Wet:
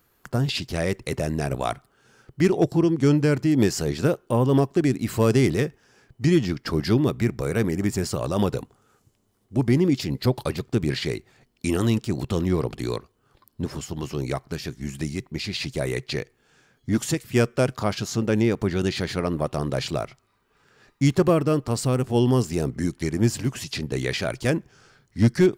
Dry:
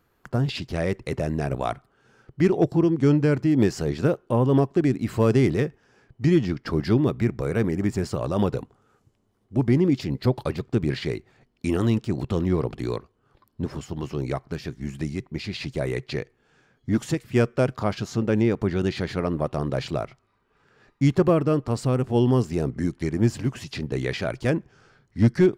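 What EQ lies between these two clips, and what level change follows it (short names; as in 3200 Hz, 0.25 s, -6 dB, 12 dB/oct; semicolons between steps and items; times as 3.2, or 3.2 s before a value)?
high shelf 3200 Hz +7.5 dB; high shelf 7700 Hz +5.5 dB; 0.0 dB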